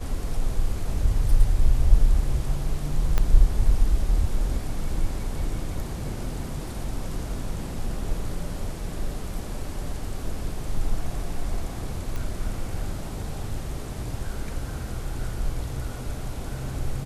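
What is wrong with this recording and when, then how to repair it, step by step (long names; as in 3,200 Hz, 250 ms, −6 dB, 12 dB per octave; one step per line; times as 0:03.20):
0:03.18: click −10 dBFS
0:12.16: click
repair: click removal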